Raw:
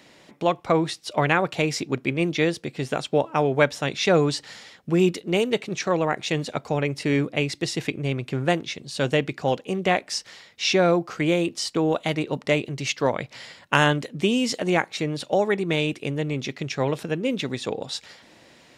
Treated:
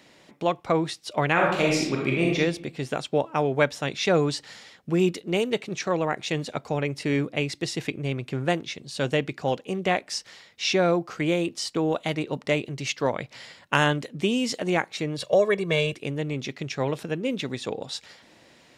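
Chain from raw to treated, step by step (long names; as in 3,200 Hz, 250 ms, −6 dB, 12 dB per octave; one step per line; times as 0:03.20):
0:01.32–0:02.36: thrown reverb, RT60 0.84 s, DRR −2.5 dB
0:15.18–0:15.95: comb filter 1.8 ms, depth 98%
level −2.5 dB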